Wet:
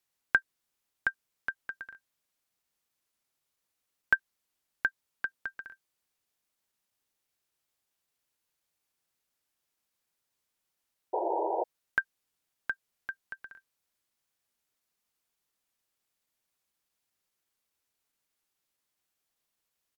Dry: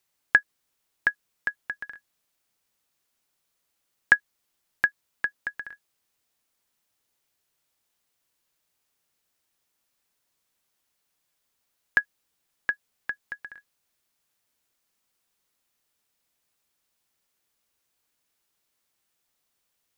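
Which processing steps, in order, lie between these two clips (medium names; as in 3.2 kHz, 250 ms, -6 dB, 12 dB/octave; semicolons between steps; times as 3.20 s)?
pitch shift -1 st; painted sound noise, 11.13–11.64 s, 320–980 Hz -24 dBFS; trim -6 dB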